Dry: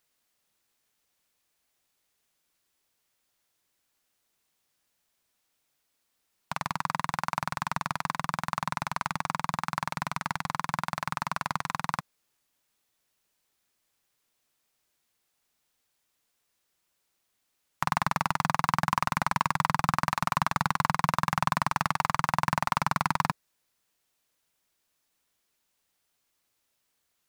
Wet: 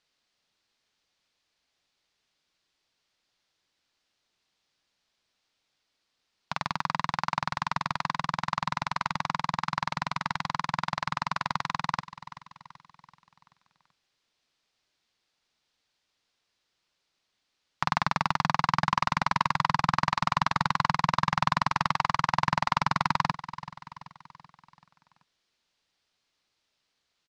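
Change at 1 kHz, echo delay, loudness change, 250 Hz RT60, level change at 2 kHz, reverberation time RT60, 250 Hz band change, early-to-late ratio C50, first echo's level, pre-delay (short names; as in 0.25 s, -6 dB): +1.0 dB, 0.383 s, +1.0 dB, none, +1.0 dB, none, 0.0 dB, none, -16.0 dB, none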